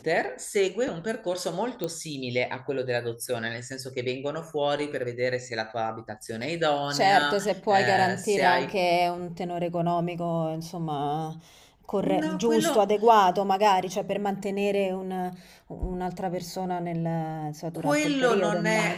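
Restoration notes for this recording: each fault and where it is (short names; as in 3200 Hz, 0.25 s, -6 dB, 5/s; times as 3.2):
1.84 pop -16 dBFS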